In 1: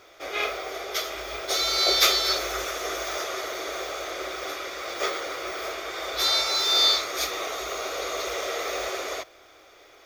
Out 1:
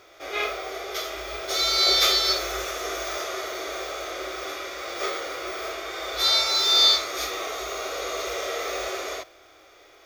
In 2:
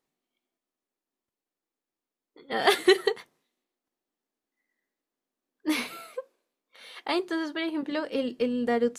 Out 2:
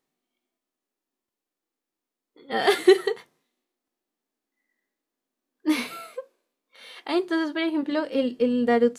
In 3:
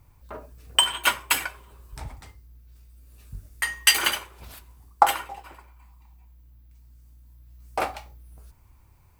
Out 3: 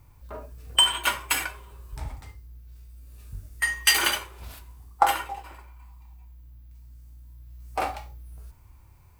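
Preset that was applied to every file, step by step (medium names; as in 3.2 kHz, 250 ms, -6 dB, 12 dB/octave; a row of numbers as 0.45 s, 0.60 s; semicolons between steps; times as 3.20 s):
harmonic-percussive split percussive -9 dB; normalise loudness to -24 LUFS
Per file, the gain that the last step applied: +3.0 dB, +5.5 dB, +4.5 dB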